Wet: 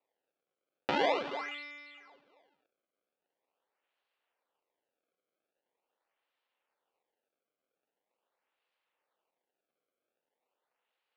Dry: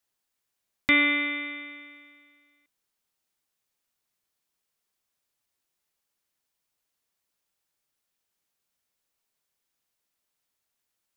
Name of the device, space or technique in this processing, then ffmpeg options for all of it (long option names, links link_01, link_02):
circuit-bent sampling toy: -af "acrusher=samples=27:mix=1:aa=0.000001:lfo=1:lforange=43.2:lforate=0.43,highpass=470,equalizer=frequency=510:width_type=q:width=4:gain=5,equalizer=frequency=870:width_type=q:width=4:gain=3,equalizer=frequency=2800:width_type=q:width=4:gain=4,lowpass=frequency=4200:width=0.5412,lowpass=frequency=4200:width=1.3066,volume=-4.5dB"